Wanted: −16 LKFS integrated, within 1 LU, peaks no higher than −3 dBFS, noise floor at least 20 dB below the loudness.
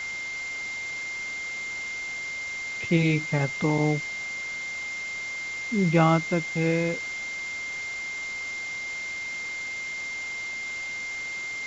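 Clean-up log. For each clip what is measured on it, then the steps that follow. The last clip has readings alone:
interfering tone 2,100 Hz; level of the tone −31 dBFS; background noise floor −34 dBFS; target noise floor −48 dBFS; integrated loudness −28.0 LKFS; sample peak −8.5 dBFS; target loudness −16.0 LKFS
→ notch filter 2,100 Hz, Q 30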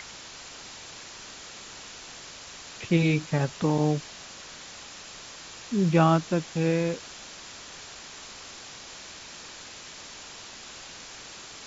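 interfering tone none found; background noise floor −44 dBFS; target noise floor −46 dBFS
→ noise reduction from a noise print 6 dB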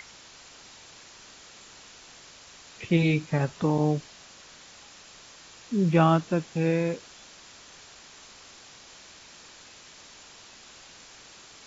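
background noise floor −50 dBFS; integrated loudness −25.5 LKFS; sample peak −9.0 dBFS; target loudness −16.0 LKFS
→ level +9.5 dB
brickwall limiter −3 dBFS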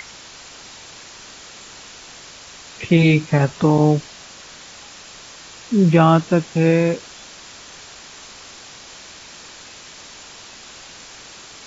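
integrated loudness −16.5 LKFS; sample peak −3.0 dBFS; background noise floor −41 dBFS

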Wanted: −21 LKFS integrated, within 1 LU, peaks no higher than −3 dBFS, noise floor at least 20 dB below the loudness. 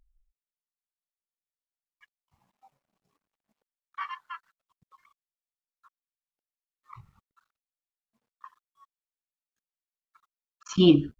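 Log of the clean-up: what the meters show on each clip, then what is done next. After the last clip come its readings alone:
number of dropouts 1; longest dropout 3.6 ms; integrated loudness −25.5 LKFS; sample peak −6.5 dBFS; target loudness −21.0 LKFS
→ repair the gap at 0:10.73, 3.6 ms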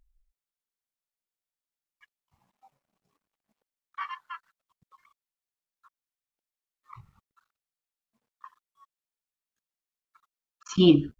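number of dropouts 0; integrated loudness −25.5 LKFS; sample peak −6.5 dBFS; target loudness −21.0 LKFS
→ level +4.5 dB
brickwall limiter −3 dBFS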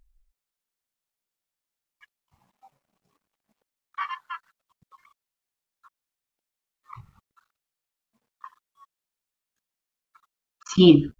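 integrated loudness −21.0 LKFS; sample peak −3.0 dBFS; background noise floor −88 dBFS

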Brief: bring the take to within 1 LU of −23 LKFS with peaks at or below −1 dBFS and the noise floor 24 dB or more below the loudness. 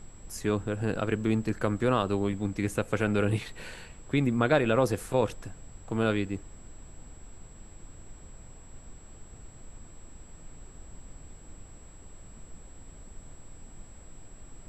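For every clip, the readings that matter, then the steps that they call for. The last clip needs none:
interfering tone 7,700 Hz; level of the tone −56 dBFS; background noise floor −50 dBFS; target noise floor −53 dBFS; integrated loudness −28.5 LKFS; sample peak −10.0 dBFS; target loudness −23.0 LKFS
→ notch filter 7,700 Hz, Q 30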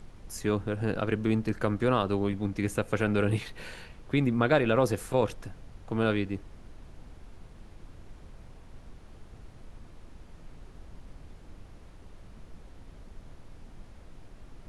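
interfering tone none found; background noise floor −51 dBFS; target noise floor −53 dBFS
→ noise reduction from a noise print 6 dB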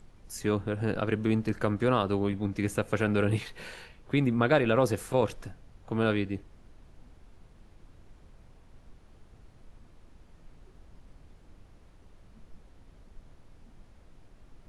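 background noise floor −57 dBFS; integrated loudness −28.5 LKFS; sample peak −10.0 dBFS; target loudness −23.0 LKFS
→ level +5.5 dB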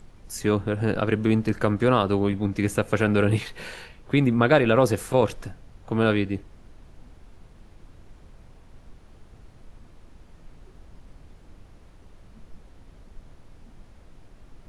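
integrated loudness −23.0 LKFS; sample peak −4.5 dBFS; background noise floor −51 dBFS

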